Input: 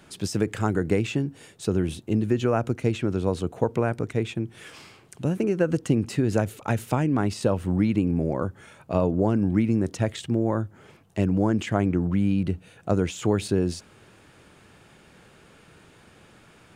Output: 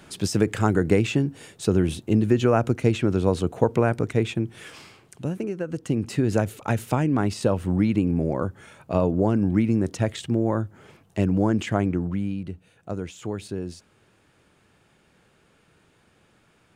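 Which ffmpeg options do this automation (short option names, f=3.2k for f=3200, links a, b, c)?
-af "volume=12.5dB,afade=t=out:st=4.33:d=1.33:silence=0.266073,afade=t=in:st=5.66:d=0.55:silence=0.354813,afade=t=out:st=11.69:d=0.73:silence=0.354813"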